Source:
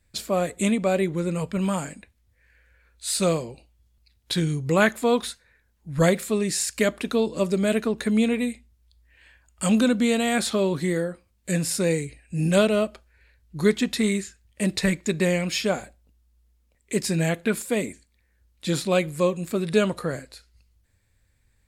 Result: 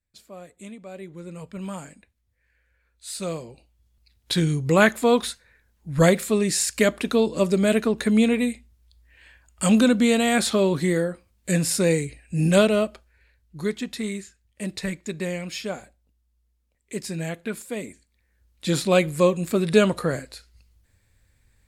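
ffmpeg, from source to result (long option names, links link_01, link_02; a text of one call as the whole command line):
ffmpeg -i in.wav -af "volume=12.5dB,afade=type=in:start_time=0.87:duration=0.86:silence=0.316228,afade=type=in:start_time=3.26:duration=1.18:silence=0.298538,afade=type=out:start_time=12.47:duration=1.2:silence=0.354813,afade=type=in:start_time=17.8:duration=1.24:silence=0.316228" out.wav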